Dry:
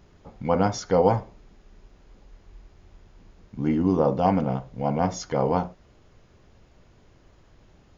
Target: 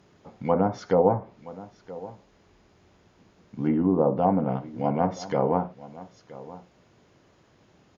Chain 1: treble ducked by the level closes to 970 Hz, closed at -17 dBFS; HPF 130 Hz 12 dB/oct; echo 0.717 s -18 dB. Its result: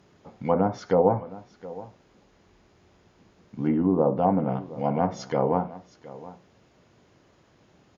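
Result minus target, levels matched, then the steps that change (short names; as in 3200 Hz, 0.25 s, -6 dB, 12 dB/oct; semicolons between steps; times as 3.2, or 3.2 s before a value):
echo 0.256 s early
change: echo 0.973 s -18 dB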